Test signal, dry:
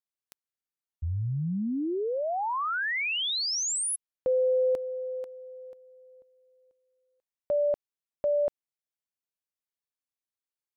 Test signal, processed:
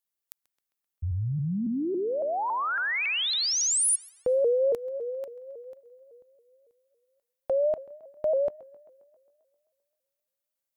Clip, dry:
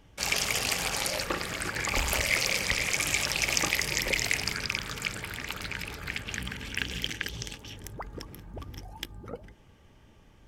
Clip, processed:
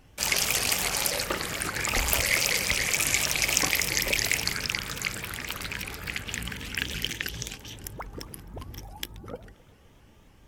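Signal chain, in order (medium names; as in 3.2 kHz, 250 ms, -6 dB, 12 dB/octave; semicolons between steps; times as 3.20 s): treble shelf 10 kHz +11 dB; tape echo 132 ms, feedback 68%, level -19 dB, low-pass 5 kHz; vibrato with a chosen wave saw up 3.6 Hz, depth 160 cents; trim +1 dB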